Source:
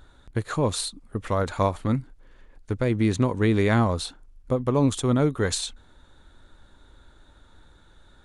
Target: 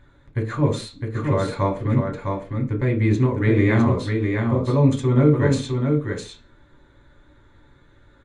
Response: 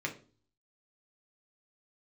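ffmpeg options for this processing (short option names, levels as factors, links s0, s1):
-filter_complex "[0:a]highshelf=f=4800:g=-8,aecho=1:1:657:0.596[s0];[1:a]atrim=start_sample=2205,afade=t=out:st=0.24:d=0.01,atrim=end_sample=11025[s1];[s0][s1]afir=irnorm=-1:irlink=0,volume=0.794"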